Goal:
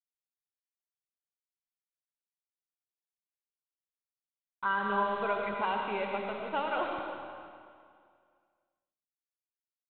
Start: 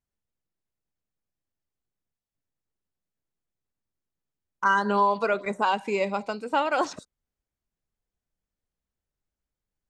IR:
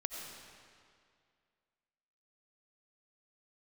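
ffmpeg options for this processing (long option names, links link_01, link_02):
-filter_complex "[0:a]asubboost=boost=4:cutoff=100,aresample=8000,acrusher=bits=6:mix=0:aa=0.000001,aresample=44100[link_01];[1:a]atrim=start_sample=2205[link_02];[link_01][link_02]afir=irnorm=-1:irlink=0,volume=-6.5dB"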